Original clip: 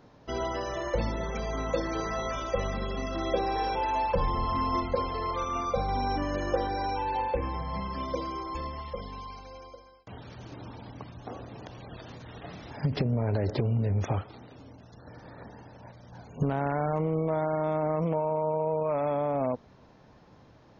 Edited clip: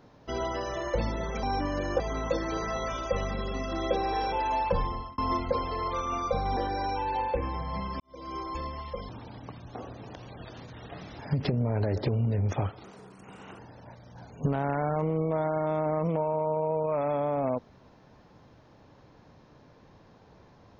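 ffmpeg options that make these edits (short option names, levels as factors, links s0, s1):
-filter_complex "[0:a]asplit=9[s0][s1][s2][s3][s4][s5][s6][s7][s8];[s0]atrim=end=1.432[s9];[s1]atrim=start=5.998:end=6.572[s10];[s2]atrim=start=1.428:end=4.61,asetpts=PTS-STARTPTS,afade=t=out:st=2.762:d=0.42[s11];[s3]atrim=start=4.61:end=6.002,asetpts=PTS-STARTPTS,afade=t=in:d=0.004:c=hsin[s12];[s4]atrim=start=6.568:end=8,asetpts=PTS-STARTPTS,afade=t=out:st=1.428:d=0.004:c=hsin[s13];[s5]atrim=start=8:end=9.092,asetpts=PTS-STARTPTS,afade=t=in:d=0.36:c=qua[s14];[s6]atrim=start=10.608:end=14.364[s15];[s7]atrim=start=14.36:end=15.56,asetpts=PTS-STARTPTS,asetrate=70560,aresample=44100[s16];[s8]atrim=start=15.556[s17];[s9][s10]acrossfade=d=0.004:c1=hsin:c2=hsin[s18];[s11][s12]concat=n=2:v=0:a=1[s19];[s18][s19]acrossfade=d=0.004:c1=hsin:c2=hsin[s20];[s13][s14]concat=n=2:v=0:a=1[s21];[s20][s21]acrossfade=d=0.004:c1=hsin:c2=hsin[s22];[s22][s15]acrossfade=d=0.004:c1=hsin:c2=hsin[s23];[s23][s16]acrossfade=d=0.004:c1=hsin:c2=hsin[s24];[s24][s17]acrossfade=d=0.004:c1=hsin:c2=hsin"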